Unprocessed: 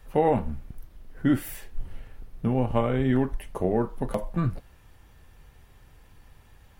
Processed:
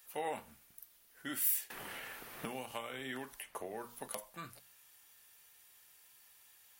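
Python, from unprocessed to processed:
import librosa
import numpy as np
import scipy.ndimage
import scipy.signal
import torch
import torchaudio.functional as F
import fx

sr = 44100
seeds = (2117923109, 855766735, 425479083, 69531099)

y = np.diff(x, prepend=0.0)
y = fx.hum_notches(y, sr, base_hz=60, count=4)
y = fx.band_squash(y, sr, depth_pct=100, at=(1.7, 4.08))
y = F.gain(torch.from_numpy(y), 5.0).numpy()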